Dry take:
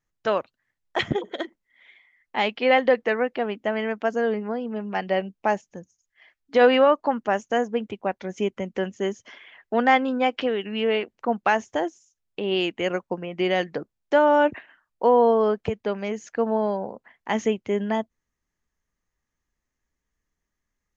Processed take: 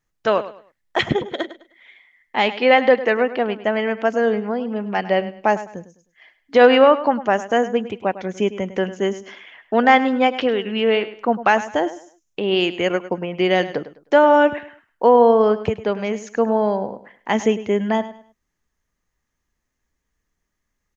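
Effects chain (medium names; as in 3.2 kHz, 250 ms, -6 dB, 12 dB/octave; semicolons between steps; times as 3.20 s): feedback delay 103 ms, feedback 28%, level -14.5 dB; trim +5 dB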